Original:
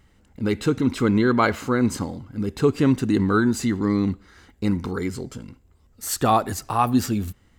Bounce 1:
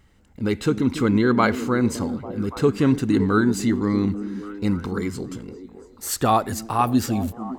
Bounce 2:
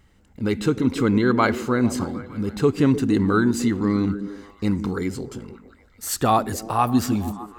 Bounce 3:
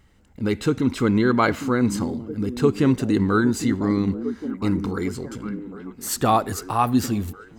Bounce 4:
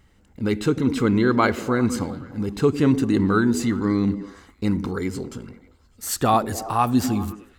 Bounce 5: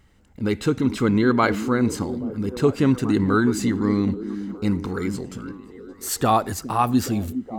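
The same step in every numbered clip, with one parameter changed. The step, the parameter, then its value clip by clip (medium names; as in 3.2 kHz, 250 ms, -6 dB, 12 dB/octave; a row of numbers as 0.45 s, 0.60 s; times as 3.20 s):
repeats whose band climbs or falls, time: 282 ms, 151 ms, 807 ms, 100 ms, 415 ms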